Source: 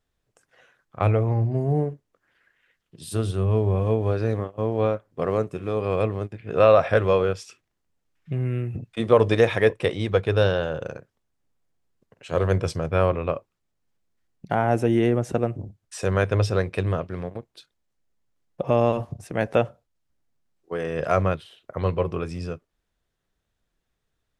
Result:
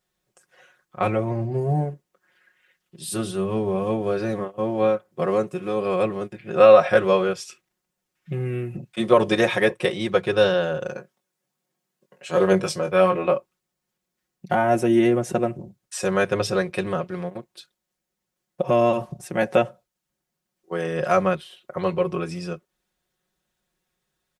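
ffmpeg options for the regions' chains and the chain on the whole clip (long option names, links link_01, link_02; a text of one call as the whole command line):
ffmpeg -i in.wav -filter_complex "[0:a]asettb=1/sr,asplit=3[link_01][link_02][link_03];[link_01]atrim=end=10.954[link_04];[link_02]atrim=start=10.95:end=13.36,asetpts=PTS-STARTPTS,afade=type=in:duration=0.004:curve=qsin,afade=type=out:start_time=2.406:duration=0.004:curve=qsin,highpass=140,aphaser=in_gain=1:out_gain=1:delay=2.1:decay=0.26:speed=1.3:type=sinusoidal,asplit=2[link_05][link_06];[link_06]adelay=21,volume=-6dB[link_07];[link_05][link_07]amix=inputs=2:normalize=0,atrim=end_sample=106281[link_08];[link_03]atrim=start=13.356[link_09];[link_04][link_08]acrossfade=duration=0.004:curve1=hsin:curve2=qsin[link_10];[link_10][link_09]acrossfade=duration=0.004:curve1=qsin:curve2=hsin,highpass=frequency=130:poles=1,highshelf=frequency=6200:gain=6,aecho=1:1:5.5:0.88" out.wav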